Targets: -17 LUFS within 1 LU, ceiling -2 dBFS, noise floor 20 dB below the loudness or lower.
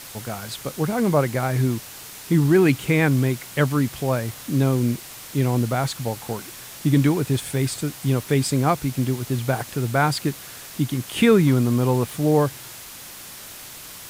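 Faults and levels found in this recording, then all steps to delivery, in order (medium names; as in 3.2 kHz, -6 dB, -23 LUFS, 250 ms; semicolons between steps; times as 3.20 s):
noise floor -40 dBFS; noise floor target -42 dBFS; loudness -22.0 LUFS; peak level -5.0 dBFS; loudness target -17.0 LUFS
-> noise reduction 6 dB, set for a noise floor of -40 dBFS; trim +5 dB; peak limiter -2 dBFS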